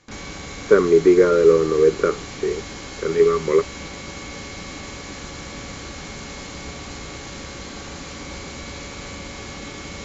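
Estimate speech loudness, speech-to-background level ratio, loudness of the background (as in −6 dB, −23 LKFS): −17.5 LKFS, 16.5 dB, −34.0 LKFS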